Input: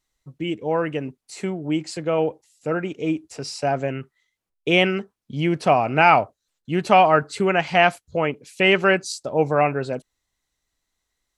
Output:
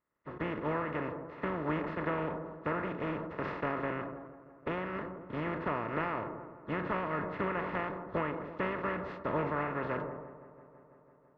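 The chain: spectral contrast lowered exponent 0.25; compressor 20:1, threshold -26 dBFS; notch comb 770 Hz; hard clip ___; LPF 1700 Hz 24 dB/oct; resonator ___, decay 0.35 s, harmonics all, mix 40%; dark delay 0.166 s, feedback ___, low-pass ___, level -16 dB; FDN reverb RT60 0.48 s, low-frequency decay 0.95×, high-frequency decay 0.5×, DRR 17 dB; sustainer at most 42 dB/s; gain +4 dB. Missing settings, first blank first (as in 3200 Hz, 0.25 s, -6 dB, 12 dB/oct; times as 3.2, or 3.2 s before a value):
-21 dBFS, 180 Hz, 77%, 1000 Hz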